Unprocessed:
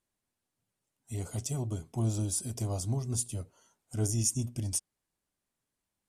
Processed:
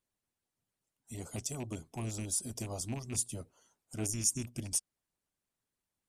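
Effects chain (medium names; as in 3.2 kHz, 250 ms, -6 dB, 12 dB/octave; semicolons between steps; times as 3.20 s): rattle on loud lows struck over -29 dBFS, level -37 dBFS; harmonic-percussive split harmonic -10 dB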